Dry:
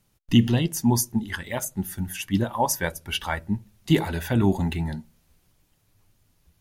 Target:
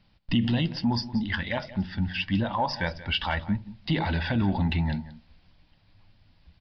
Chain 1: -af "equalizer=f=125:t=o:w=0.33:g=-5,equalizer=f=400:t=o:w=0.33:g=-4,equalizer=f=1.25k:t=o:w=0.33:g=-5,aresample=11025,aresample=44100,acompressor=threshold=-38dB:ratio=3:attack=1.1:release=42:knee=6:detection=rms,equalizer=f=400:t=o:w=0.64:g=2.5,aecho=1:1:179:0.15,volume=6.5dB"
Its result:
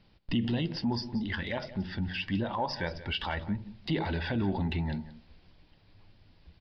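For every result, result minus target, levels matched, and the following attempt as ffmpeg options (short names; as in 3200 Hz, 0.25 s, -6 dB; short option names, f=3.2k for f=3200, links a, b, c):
compressor: peak gain reduction +6.5 dB; 500 Hz band +3.0 dB
-af "equalizer=f=125:t=o:w=0.33:g=-5,equalizer=f=400:t=o:w=0.33:g=-4,equalizer=f=1.25k:t=o:w=0.33:g=-5,aresample=11025,aresample=44100,acompressor=threshold=-28.5dB:ratio=3:attack=1.1:release=42:knee=6:detection=rms,equalizer=f=400:t=o:w=0.64:g=2.5,aecho=1:1:179:0.15,volume=6.5dB"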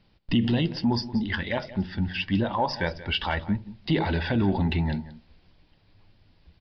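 500 Hz band +3.5 dB
-af "equalizer=f=125:t=o:w=0.33:g=-5,equalizer=f=400:t=o:w=0.33:g=-4,equalizer=f=1.25k:t=o:w=0.33:g=-5,aresample=11025,aresample=44100,acompressor=threshold=-28.5dB:ratio=3:attack=1.1:release=42:knee=6:detection=rms,equalizer=f=400:t=o:w=0.64:g=-7,aecho=1:1:179:0.15,volume=6.5dB"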